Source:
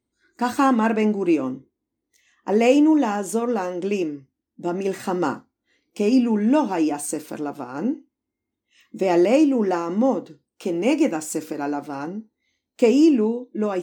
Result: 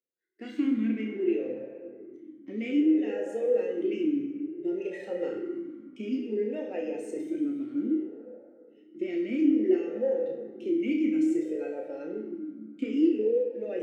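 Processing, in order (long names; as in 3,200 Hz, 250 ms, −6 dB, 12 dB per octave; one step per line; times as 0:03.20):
noise reduction from a noise print of the clip's start 13 dB
reversed playback
upward compression, threshold −19 dBFS
reversed playback
leveller curve on the samples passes 1
downward compressor, threshold −15 dBFS, peak gain reduction 6 dB
on a send: flutter between parallel walls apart 5.5 metres, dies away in 0.3 s
on the sum: dense smooth reverb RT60 2.6 s, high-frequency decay 0.45×, DRR 3.5 dB
formant filter swept between two vowels e-i 0.59 Hz
level −3 dB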